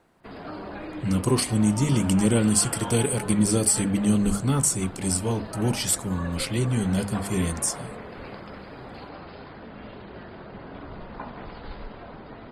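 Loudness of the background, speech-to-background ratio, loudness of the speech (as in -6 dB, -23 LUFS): -38.5 LUFS, 15.0 dB, -23.5 LUFS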